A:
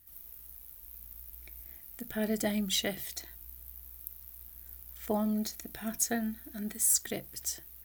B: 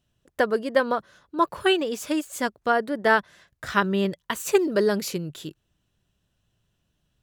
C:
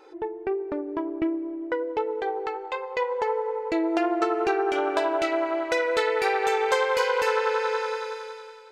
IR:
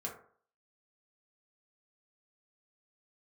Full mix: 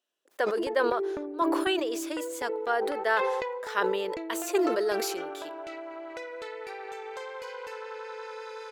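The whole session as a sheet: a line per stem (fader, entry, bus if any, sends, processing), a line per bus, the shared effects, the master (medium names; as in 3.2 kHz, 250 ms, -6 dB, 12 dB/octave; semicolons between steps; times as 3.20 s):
mute
-6.5 dB, 0.00 s, no send, high-pass 360 Hz 24 dB/octave
-3.5 dB, 0.45 s, no send, compression 16:1, threshold -33 dBFS, peak gain reduction 16 dB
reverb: none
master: decay stretcher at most 29 dB/s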